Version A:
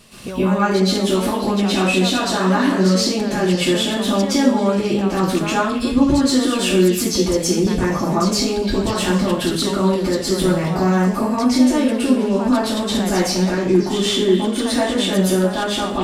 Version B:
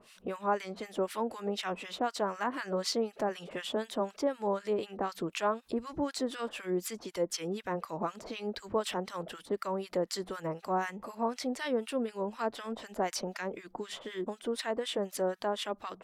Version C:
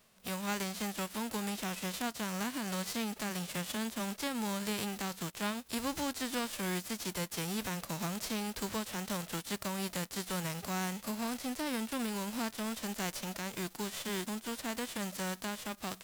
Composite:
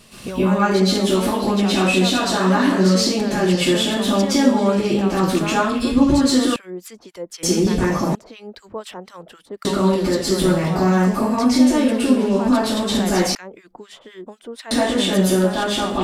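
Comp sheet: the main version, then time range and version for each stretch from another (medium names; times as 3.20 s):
A
6.56–7.43 s: from B
8.15–9.65 s: from B
13.35–14.71 s: from B
not used: C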